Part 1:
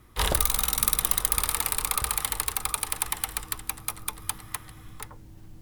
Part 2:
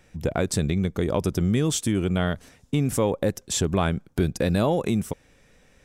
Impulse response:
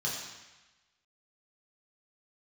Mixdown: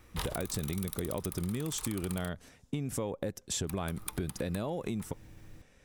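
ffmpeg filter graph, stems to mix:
-filter_complex "[0:a]aeval=exprs='0.841*(cos(1*acos(clip(val(0)/0.841,-1,1)))-cos(1*PI/2))+0.0473*(cos(7*acos(clip(val(0)/0.841,-1,1)))-cos(7*PI/2))':c=same,acompressor=threshold=-28dB:ratio=5,volume=-0.5dB,asplit=3[a][b][c];[a]atrim=end=2.29,asetpts=PTS-STARTPTS,afade=t=out:st=2.286:d=0.004:c=hsin[d];[b]atrim=start=2.29:end=3.67,asetpts=PTS-STARTPTS,volume=0[e];[c]atrim=start=3.67,asetpts=PTS-STARTPTS,afade=t=in:d=0.004:c=hsin[f];[d][e][f]concat=n=3:v=0:a=1[g];[1:a]volume=-5dB,asplit=2[h][i];[i]apad=whole_len=247708[j];[g][j]sidechaincompress=threshold=-29dB:ratio=8:attack=24:release=208[k];[k][h]amix=inputs=2:normalize=0,acompressor=threshold=-31dB:ratio=6"

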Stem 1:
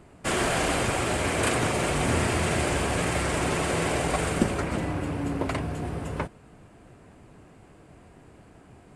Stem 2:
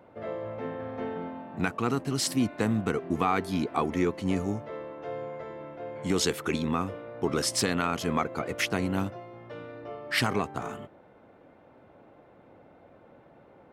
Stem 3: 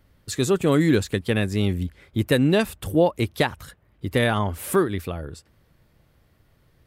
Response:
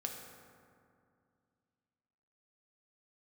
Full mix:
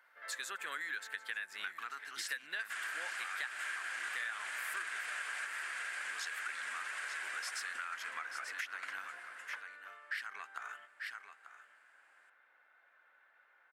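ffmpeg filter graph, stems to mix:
-filter_complex "[0:a]adelay=2450,volume=-6dB,asplit=2[a][b];[b]volume=-7dB[c];[1:a]volume=-9dB,asplit=2[d][e];[e]volume=-13.5dB[f];[2:a]volume=-10.5dB,asplit=3[g][h][i];[h]volume=-18dB[j];[i]apad=whole_len=503168[k];[a][k]sidechaingate=range=-33dB:threshold=-58dB:ratio=16:detection=peak[l];[l][d]amix=inputs=2:normalize=0,acompressor=threshold=-33dB:ratio=6,volume=0dB[m];[c][f][j]amix=inputs=3:normalize=0,aecho=0:1:887:1[n];[g][m][n]amix=inputs=3:normalize=0,highpass=f=1.6k:t=q:w=4.7,acompressor=threshold=-38dB:ratio=5"

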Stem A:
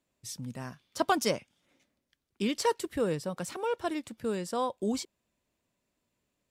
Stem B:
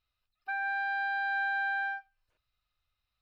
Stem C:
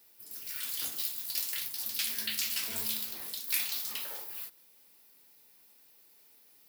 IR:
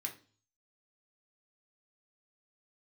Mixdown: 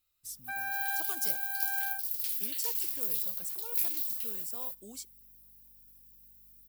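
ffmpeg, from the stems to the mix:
-filter_complex "[0:a]highshelf=f=7.2k:g=10.5,volume=-19dB,asplit=3[a][b][c];[b]volume=-20dB[d];[1:a]volume=-4dB[e];[2:a]aeval=exprs='val(0)+0.00398*(sin(2*PI*50*n/s)+sin(2*PI*2*50*n/s)/2+sin(2*PI*3*50*n/s)/3+sin(2*PI*4*50*n/s)/4+sin(2*PI*5*50*n/s)/5)':c=same,equalizer=f=110:w=1.8:g=-9.5,adelay=250,volume=-17dB[f];[c]apad=whole_len=141597[g];[e][g]sidechaincompress=threshold=-50dB:ratio=8:attack=16:release=816[h];[3:a]atrim=start_sample=2205[i];[d][i]afir=irnorm=-1:irlink=0[j];[a][h][f][j]amix=inputs=4:normalize=0,aemphasis=mode=production:type=75fm"

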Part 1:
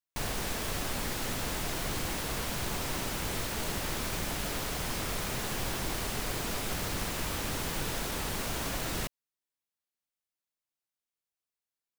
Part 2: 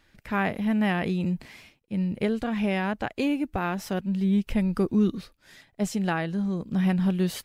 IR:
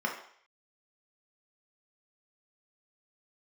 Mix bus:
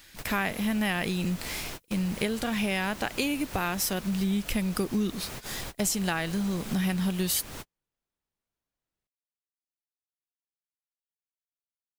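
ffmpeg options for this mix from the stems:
-filter_complex "[0:a]volume=-4.5dB[a];[1:a]crystalizer=i=6:c=0,volume=2.5dB,asplit=2[b][c];[c]apad=whole_len=528350[d];[a][d]sidechaingate=range=-53dB:threshold=-47dB:ratio=16:detection=peak[e];[e][b]amix=inputs=2:normalize=0,acompressor=threshold=-27dB:ratio=3"

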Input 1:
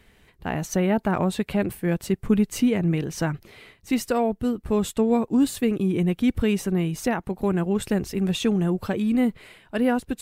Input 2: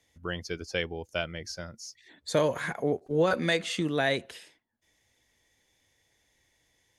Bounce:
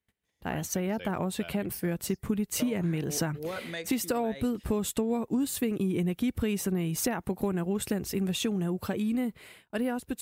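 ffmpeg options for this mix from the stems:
-filter_complex "[0:a]agate=range=-28dB:threshold=-51dB:ratio=16:detection=peak,highshelf=f=8.5k:g=10.5,dynaudnorm=f=240:g=21:m=11.5dB,volume=-4.5dB[a];[1:a]adelay=250,volume=-11dB[b];[a][b]amix=inputs=2:normalize=0,highpass=53,acompressor=threshold=-26dB:ratio=6"

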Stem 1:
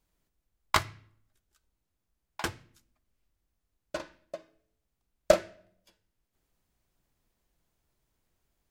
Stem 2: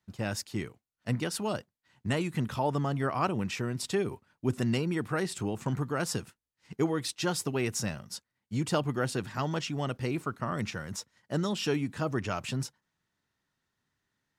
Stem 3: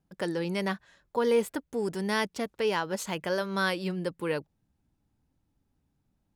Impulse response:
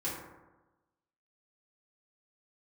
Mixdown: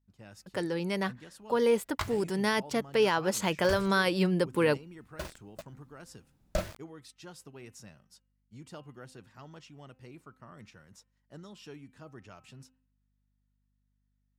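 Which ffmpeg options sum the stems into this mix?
-filter_complex "[0:a]asubboost=boost=11.5:cutoff=110,acrusher=bits=6:mix=0:aa=0.000001,adelay=1250,volume=-11dB[a];[1:a]bandreject=f=258.9:t=h:w=4,bandreject=f=517.8:t=h:w=4,bandreject=f=776.7:t=h:w=4,bandreject=f=1.0356k:t=h:w=4,bandreject=f=1.2945k:t=h:w=4,bandreject=f=1.5534k:t=h:w=4,bandreject=f=1.8123k:t=h:w=4,bandreject=f=2.0712k:t=h:w=4,bandreject=f=2.3301k:t=h:w=4,bandreject=f=2.589k:t=h:w=4,bandreject=f=2.8479k:t=h:w=4,bandreject=f=3.1068k:t=h:w=4,aeval=exprs='val(0)+0.00141*(sin(2*PI*50*n/s)+sin(2*PI*2*50*n/s)/2+sin(2*PI*3*50*n/s)/3+sin(2*PI*4*50*n/s)/4+sin(2*PI*5*50*n/s)/5)':c=same,volume=-18dB[b];[2:a]adelay=350,volume=-1.5dB[c];[a][c]amix=inputs=2:normalize=0,dynaudnorm=f=580:g=11:m=8dB,alimiter=limit=-16.5dB:level=0:latency=1:release=38,volume=0dB[d];[b][d]amix=inputs=2:normalize=0"

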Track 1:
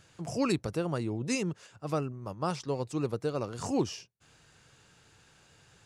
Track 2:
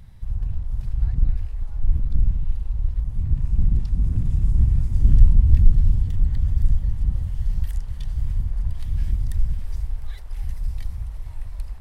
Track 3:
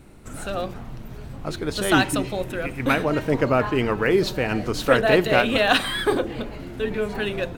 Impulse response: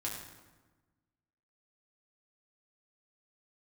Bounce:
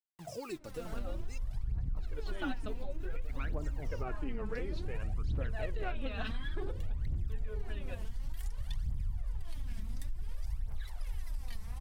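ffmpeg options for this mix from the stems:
-filter_complex "[0:a]acompressor=threshold=-30dB:ratio=6,acrusher=bits=7:mix=0:aa=0.000001,volume=-10.5dB,asplit=3[a][b][c];[a]atrim=end=1.38,asetpts=PTS-STARTPTS,afade=t=out:st=1.376:d=0.004:c=hsin[d];[b]atrim=start=1.38:end=1.96,asetpts=PTS-STARTPTS,volume=0[e];[c]atrim=start=1.96,asetpts=PTS-STARTPTS,afade=t=in:d=0.004:c=hsin[f];[d][e][f]concat=n=3:v=0:a=1[g];[1:a]lowshelf=f=140:g=-10,adelay=700,volume=0.5dB[h];[2:a]lowpass=5.8k,highshelf=f=3.6k:g=-7.5,adelay=500,volume=-15dB[i];[g][h]amix=inputs=2:normalize=0,asoftclip=type=tanh:threshold=-21dB,acompressor=threshold=-28dB:ratio=6,volume=0dB[j];[i][j]amix=inputs=2:normalize=0,aphaser=in_gain=1:out_gain=1:delay=4.7:decay=0.69:speed=0.56:type=triangular,acompressor=threshold=-33dB:ratio=4"

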